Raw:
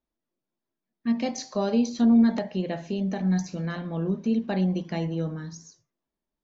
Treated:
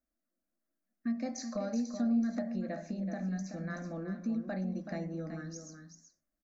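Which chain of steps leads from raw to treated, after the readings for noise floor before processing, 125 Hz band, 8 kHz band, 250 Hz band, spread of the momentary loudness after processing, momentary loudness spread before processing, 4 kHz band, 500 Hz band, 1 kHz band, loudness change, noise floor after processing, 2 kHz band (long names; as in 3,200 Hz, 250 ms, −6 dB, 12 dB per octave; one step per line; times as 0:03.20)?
below −85 dBFS, −11.0 dB, can't be measured, −10.0 dB, 12 LU, 12 LU, −13.0 dB, −10.0 dB, −10.5 dB, −10.0 dB, below −85 dBFS, −7.0 dB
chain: downward compressor 2.5 to 1, threshold −34 dBFS, peak gain reduction 12.5 dB
phaser with its sweep stopped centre 620 Hz, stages 8
on a send: single-tap delay 378 ms −8.5 dB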